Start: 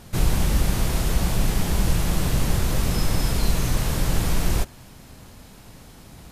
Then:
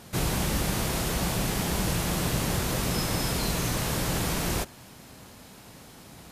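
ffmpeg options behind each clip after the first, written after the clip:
-af "highpass=f=170:p=1"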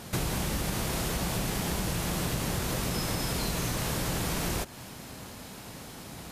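-af "acompressor=threshold=-32dB:ratio=6,volume=4.5dB"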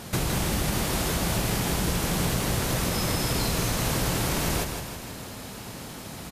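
-af "aecho=1:1:161|322|483|644|805|966:0.473|0.246|0.128|0.0665|0.0346|0.018,volume=3.5dB"

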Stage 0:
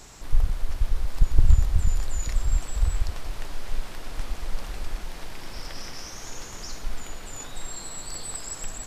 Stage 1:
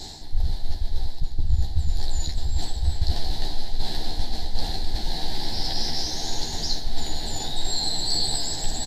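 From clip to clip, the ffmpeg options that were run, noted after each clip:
-filter_complex "[0:a]firequalizer=gain_entry='entry(350,0);entry(540,-7);entry(800,4);entry(1200,-23);entry(1700,-5);entry(2500,-13);entry(4100,12);entry(5800,-4);entry(9000,-7)':delay=0.05:min_phase=1,areverse,acompressor=threshold=-26dB:ratio=10,areverse,asplit=2[a][b];[b]adelay=13,volume=-3dB[c];[a][c]amix=inputs=2:normalize=0,volume=8.5dB"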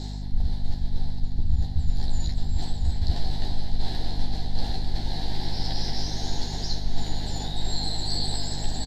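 -af "lowpass=f=3.9k:p=1,aeval=exprs='val(0)+0.0355*(sin(2*PI*50*n/s)+sin(2*PI*2*50*n/s)/2+sin(2*PI*3*50*n/s)/3+sin(2*PI*4*50*n/s)/4+sin(2*PI*5*50*n/s)/5)':c=same,aecho=1:1:647:0.237,volume=-2dB"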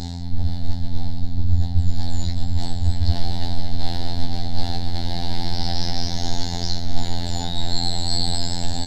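-af "afftfilt=real='hypot(re,im)*cos(PI*b)':imag='0':win_size=2048:overlap=0.75,volume=8.5dB"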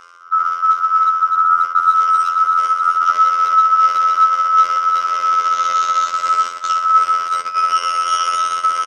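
-filter_complex "[0:a]aeval=exprs='val(0)*sin(2*PI*1300*n/s)':c=same,agate=range=-13dB:threshold=-23dB:ratio=16:detection=peak,asplit=2[a][b];[b]adelay=380,highpass=300,lowpass=3.4k,asoftclip=type=hard:threshold=-11dB,volume=-13dB[c];[a][c]amix=inputs=2:normalize=0,volume=1dB"

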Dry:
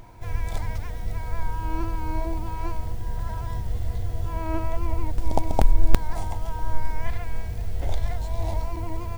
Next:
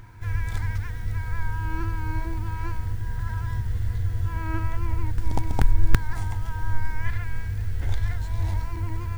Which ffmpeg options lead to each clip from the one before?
-af "equalizer=f=100:t=o:w=0.67:g=9,equalizer=f=630:t=o:w=0.67:g=-12,equalizer=f=1.6k:t=o:w=0.67:g=10,volume=-2dB"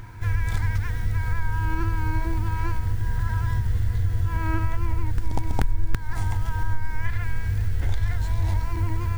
-af "acompressor=threshold=-24dB:ratio=3,volume=5.5dB"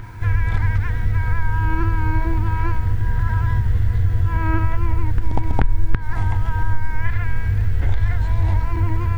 -filter_complex "[0:a]acrossover=split=3200[a][b];[b]acompressor=threshold=-60dB:ratio=4:attack=1:release=60[c];[a][c]amix=inputs=2:normalize=0,volume=5.5dB"

